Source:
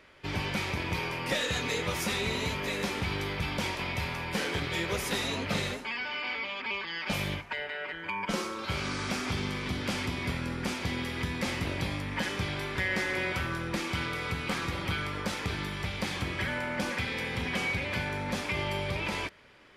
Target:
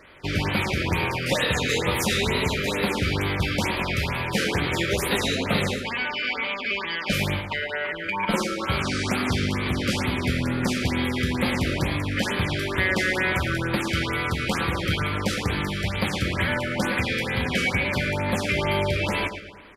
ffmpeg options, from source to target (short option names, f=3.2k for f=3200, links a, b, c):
-filter_complex "[0:a]asplit=2[a][b];[b]adelay=112,lowpass=f=4.6k:p=1,volume=-9dB,asplit=2[c][d];[d]adelay=112,lowpass=f=4.6k:p=1,volume=0.51,asplit=2[e][f];[f]adelay=112,lowpass=f=4.6k:p=1,volume=0.51,asplit=2[g][h];[h]adelay=112,lowpass=f=4.6k:p=1,volume=0.51,asplit=2[i][j];[j]adelay=112,lowpass=f=4.6k:p=1,volume=0.51,asplit=2[k][l];[l]adelay=112,lowpass=f=4.6k:p=1,volume=0.51[m];[a][c][e][g][i][k][m]amix=inputs=7:normalize=0,afftfilt=real='re*(1-between(b*sr/1024,820*pow(7100/820,0.5+0.5*sin(2*PI*2.2*pts/sr))/1.41,820*pow(7100/820,0.5+0.5*sin(2*PI*2.2*pts/sr))*1.41))':imag='im*(1-between(b*sr/1024,820*pow(7100/820,0.5+0.5*sin(2*PI*2.2*pts/sr))/1.41,820*pow(7100/820,0.5+0.5*sin(2*PI*2.2*pts/sr))*1.41))':win_size=1024:overlap=0.75,volume=7.5dB"